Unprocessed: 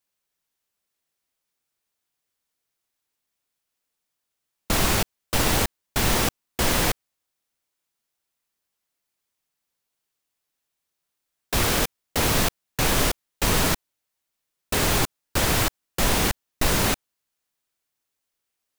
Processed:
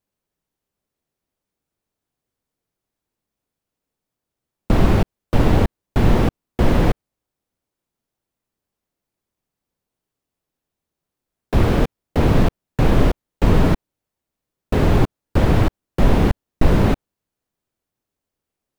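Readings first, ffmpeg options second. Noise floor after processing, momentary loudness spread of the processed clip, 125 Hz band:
−85 dBFS, 6 LU, +10.5 dB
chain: -filter_complex "[0:a]acrossover=split=4000[link_01][link_02];[link_02]acompressor=threshold=-38dB:ratio=4:attack=1:release=60[link_03];[link_01][link_03]amix=inputs=2:normalize=0,tiltshelf=frequency=830:gain=8.5,volume=2.5dB"

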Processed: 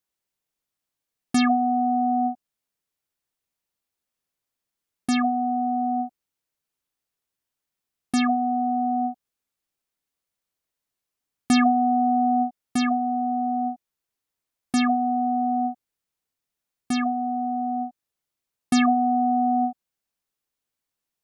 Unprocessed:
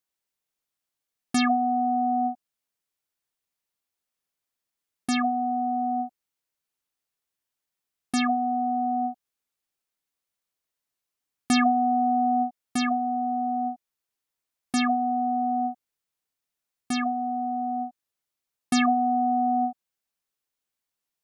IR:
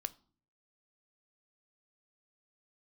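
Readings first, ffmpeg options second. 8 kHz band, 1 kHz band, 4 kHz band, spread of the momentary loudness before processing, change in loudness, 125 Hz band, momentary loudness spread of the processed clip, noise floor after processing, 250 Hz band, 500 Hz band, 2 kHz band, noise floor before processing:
0.0 dB, +1.5 dB, 0.0 dB, 9 LU, +2.0 dB, can't be measured, 9 LU, below −85 dBFS, +3.5 dB, +1.5 dB, +0.5 dB, below −85 dBFS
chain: -af "lowshelf=frequency=470:gain=4.5"

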